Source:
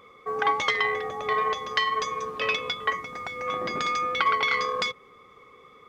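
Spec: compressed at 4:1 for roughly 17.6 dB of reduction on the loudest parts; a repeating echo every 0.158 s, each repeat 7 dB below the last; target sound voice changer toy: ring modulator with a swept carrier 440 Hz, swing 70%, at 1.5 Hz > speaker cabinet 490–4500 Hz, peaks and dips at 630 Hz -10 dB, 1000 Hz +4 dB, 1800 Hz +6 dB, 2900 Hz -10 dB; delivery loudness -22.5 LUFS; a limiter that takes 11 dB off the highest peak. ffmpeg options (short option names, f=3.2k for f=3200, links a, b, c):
-af "acompressor=threshold=-42dB:ratio=4,alimiter=level_in=9dB:limit=-24dB:level=0:latency=1,volume=-9dB,aecho=1:1:158|316|474|632|790:0.447|0.201|0.0905|0.0407|0.0183,aeval=exprs='val(0)*sin(2*PI*440*n/s+440*0.7/1.5*sin(2*PI*1.5*n/s))':c=same,highpass=490,equalizer=f=630:t=q:w=4:g=-10,equalizer=f=1k:t=q:w=4:g=4,equalizer=f=1.8k:t=q:w=4:g=6,equalizer=f=2.9k:t=q:w=4:g=-10,lowpass=f=4.5k:w=0.5412,lowpass=f=4.5k:w=1.3066,volume=22dB"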